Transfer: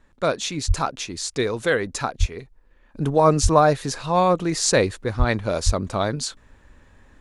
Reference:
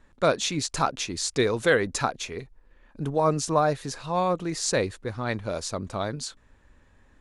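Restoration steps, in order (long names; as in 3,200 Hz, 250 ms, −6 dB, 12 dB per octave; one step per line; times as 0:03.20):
high-pass at the plosives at 0:00.67/0:02.19/0:03.42/0:05.18/0:05.65
level 0 dB, from 0:02.94 −6.5 dB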